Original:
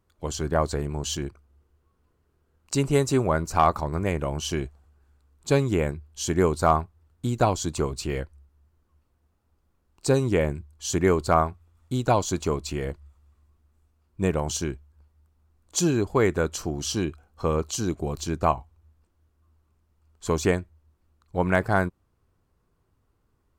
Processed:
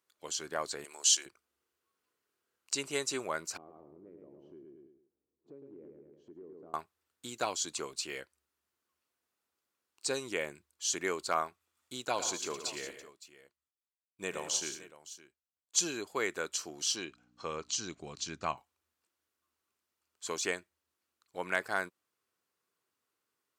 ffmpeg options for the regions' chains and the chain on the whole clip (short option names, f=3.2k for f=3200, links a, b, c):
-filter_complex "[0:a]asettb=1/sr,asplit=3[a][b][c];[a]atrim=end=0.844[d];[b]atrim=start=0.84:end=1.26,asetpts=PTS-STARTPTS,afade=t=in:d=0.004:c=qsin,afade=t=out:st=0.416:d=0.004:c=qsin,highpass=520,equalizer=f=10k:t=o:w=2.1:g=11.5[e];[c]atrim=start=1.256[f];[d][e]acrossfade=d=0.004:c1=hsin:c2=qsin[g];[g][f]acrossfade=d=0.004:c1=qsin:c2=hsin,asettb=1/sr,asplit=3[h][i][j];[h]atrim=end=3.574[k];[i]atrim=start=3.57:end=6.74,asetpts=PTS-STARTPTS,afade=t=in:d=0.004:c=qsin,afade=t=out:st=3.166:d=0.004:c=qsin,lowpass=f=350:t=q:w=2.1,aecho=1:1:109|218|327|436:0.531|0.181|0.0614|0.0209,atrim=end_sample=139797,acompressor=threshold=-35dB:ratio=4:attack=3.2:release=140:knee=1:detection=peak[l];[j]atrim=start=6.736[m];[k][l]acrossfade=d=0.004:c1=hsin:c2=qsin[n];[n][m]acrossfade=d=0.004:c1=qsin:c2=hsin,asettb=1/sr,asplit=3[o][p][q];[o]atrim=end=12.054[r];[p]atrim=start=12.05:end=15.79,asetpts=PTS-STARTPTS,afade=t=in:d=0.004:c=qsin,afade=t=out:st=3.736:d=0.004:c=qsin,agate=range=-33dB:threshold=-50dB:ratio=3:release=100:detection=peak,aecho=1:1:77|114|176|564:0.133|0.299|0.211|0.15,atrim=end_sample=164934[s];[q]atrim=start=15.786[t];[r][s]acrossfade=d=0.004:c1=hsin:c2=qsin[u];[u][t]acrossfade=d=0.004:c1=qsin:c2=hsin,asettb=1/sr,asplit=3[v][w][x];[v]atrim=end=16.964[y];[w]atrim=start=16.96:end=18.57,asetpts=PTS-STARTPTS,afade=t=in:d=0.004:c=qsin,afade=t=out:st=1.606:d=0.004:c=qsin,lowpass=f=6.9k:w=0.5412,lowpass=f=6.9k:w=1.3066,asubboost=boost=8.5:cutoff=190,aeval=exprs='val(0)+0.00891*(sin(2*PI*60*n/s)+sin(2*PI*2*60*n/s)/2+sin(2*PI*3*60*n/s)/3+sin(2*PI*4*60*n/s)/4+sin(2*PI*5*60*n/s)/5)':c=same[z];[x]atrim=start=18.566[aa];[y][z]acrossfade=d=0.004:c1=hsin:c2=qsin[ab];[ab][aa]acrossfade=d=0.004:c1=qsin:c2=hsin,highpass=650,acrossover=split=9400[ac][ad];[ad]acompressor=threshold=-57dB:ratio=4:attack=1:release=60[ae];[ac][ae]amix=inputs=2:normalize=0,equalizer=f=820:t=o:w=1.9:g=-11"